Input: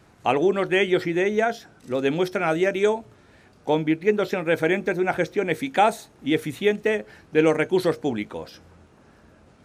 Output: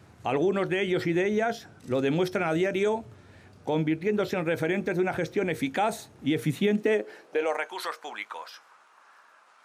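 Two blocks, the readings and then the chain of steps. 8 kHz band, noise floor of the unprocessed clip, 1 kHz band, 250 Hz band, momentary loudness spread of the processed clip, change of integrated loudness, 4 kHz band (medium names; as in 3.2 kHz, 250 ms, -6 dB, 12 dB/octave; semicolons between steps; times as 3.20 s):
-3.0 dB, -55 dBFS, -6.0 dB, -3.5 dB, 9 LU, -4.5 dB, -4.5 dB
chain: peak limiter -16.5 dBFS, peak gain reduction 10 dB; high-pass sweep 89 Hz -> 1.1 kHz, 6.21–7.77 s; trim -1 dB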